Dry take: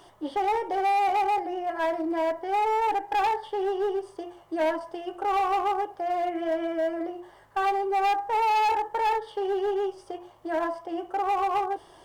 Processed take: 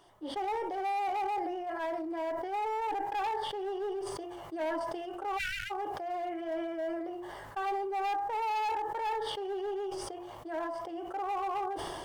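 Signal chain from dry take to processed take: spectral selection erased 5.38–5.71 s, 210–1300 Hz; decay stretcher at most 23 dB/s; trim -9 dB

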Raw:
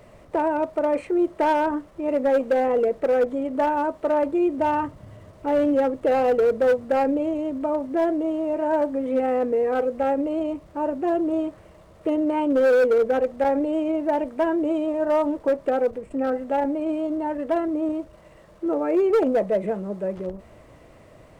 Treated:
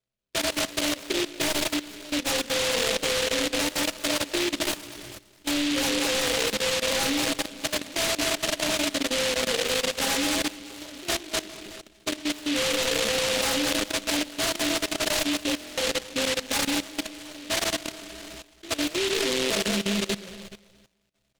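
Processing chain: backward echo that repeats 106 ms, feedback 75%, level -7.5 dB; inharmonic resonator 60 Hz, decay 0.42 s, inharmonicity 0.03; on a send: frequency-shifting echo 184 ms, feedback 63%, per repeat +120 Hz, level -23 dB; on the sum: expander -38 dBFS; in parallel at -2.5 dB: compression 5:1, threshold -42 dBFS, peak gain reduction 21.5 dB; on the sum: reverberation RT60 0.15 s, pre-delay 5 ms, DRR 11.5 dB; level held to a coarse grid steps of 16 dB; buffer glitch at 15.59/19.32 s, samples 1024, times 7; delay time shaken by noise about 2.9 kHz, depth 0.3 ms; trim +7 dB

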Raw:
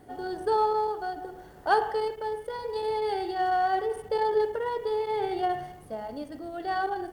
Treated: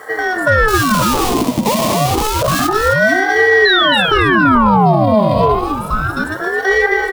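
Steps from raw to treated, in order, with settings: single-diode clipper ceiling -26 dBFS; dynamic bell 6.9 kHz, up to -5 dB, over -53 dBFS, Q 0.88; in parallel at +1.5 dB: compression 6:1, threshold -35 dBFS, peak gain reduction 14 dB; 0.68–2.67 s: on the sum: Schmitt trigger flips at -35.5 dBFS; 3.65–5.15 s: painted sound fall 290–3000 Hz -20 dBFS; static phaser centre 600 Hz, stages 4; on a send: feedback delay 266 ms, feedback 35%, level -7.5 dB; on the sum: loudness maximiser +18.5 dB; ring modulator with a swept carrier 700 Hz, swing 70%, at 0.29 Hz

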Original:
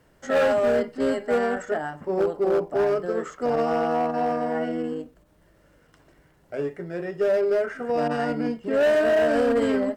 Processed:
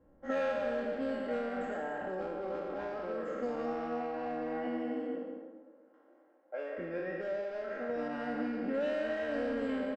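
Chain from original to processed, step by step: spectral sustain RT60 1.56 s; 4.65–6.77 s: high-pass 140 Hz -> 470 Hz 24 dB/octave; speakerphone echo 240 ms, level -10 dB; compression 6:1, threshold -28 dBFS, peak gain reduction 11 dB; level-controlled noise filter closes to 730 Hz, open at -21.5 dBFS; comb 3.7 ms, depth 66%; on a send: delay 185 ms -9 dB; on the sum: trim -7 dB

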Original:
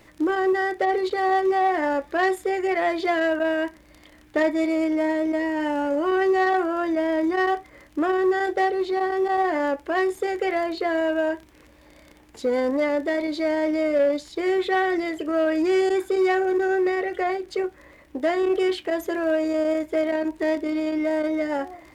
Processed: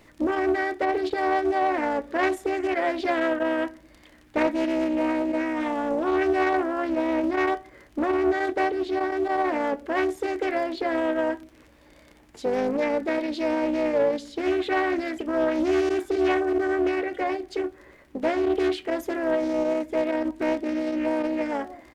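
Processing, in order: on a send at -23.5 dB: bass shelf 450 Hz +7.5 dB + reverberation RT60 0.65 s, pre-delay 19 ms; on the sum: harmony voices -4 st -9 dB; loudspeaker Doppler distortion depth 0.34 ms; trim -2.5 dB

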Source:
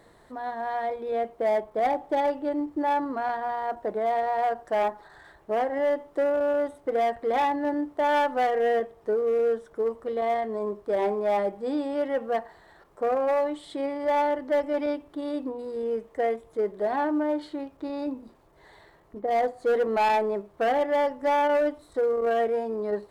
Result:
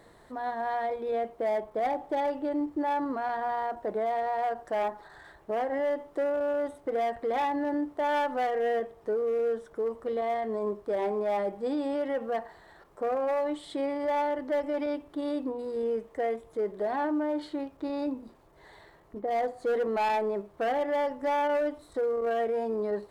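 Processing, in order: peak limiter -23.5 dBFS, peak gain reduction 5 dB

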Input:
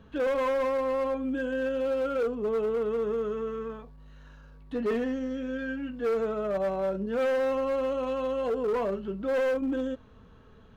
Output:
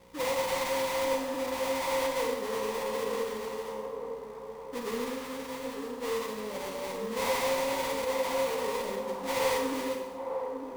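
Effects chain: resonant low shelf 430 Hz +10.5 dB, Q 1.5; mains buzz 60 Hz, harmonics 9, -45 dBFS -1 dB/octave; cascade formant filter e; sample-rate reducer 1.5 kHz, jitter 20%; feedback echo behind a band-pass 902 ms, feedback 53%, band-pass 530 Hz, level -5 dB; Schroeder reverb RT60 0.87 s, combs from 33 ms, DRR 2.5 dB; trim -3.5 dB

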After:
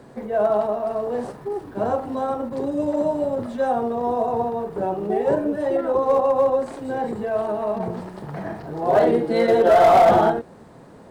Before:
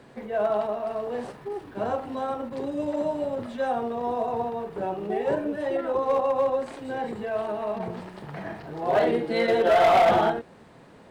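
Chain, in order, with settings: peaking EQ 2.7 kHz -9 dB 1.6 oct; trim +6 dB

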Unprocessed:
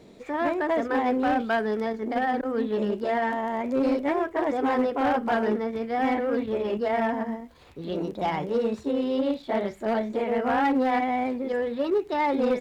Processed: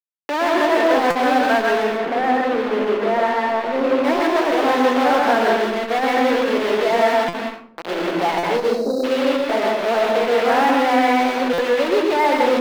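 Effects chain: bit crusher 5-bit; 1.83–4.04 s: treble shelf 3.2 kHz -12 dB; 8.58–9.04 s: spectral selection erased 820–3800 Hz; reverberation RT60 0.50 s, pre-delay 119 ms, DRR 0.5 dB; upward compressor, threshold -33 dBFS; three-band isolator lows -21 dB, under 290 Hz, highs -17 dB, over 4.2 kHz; buffer glitch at 1.10/7.28/8.38/11.53 s, samples 256, times 8; transformer saturation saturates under 650 Hz; trim +7 dB

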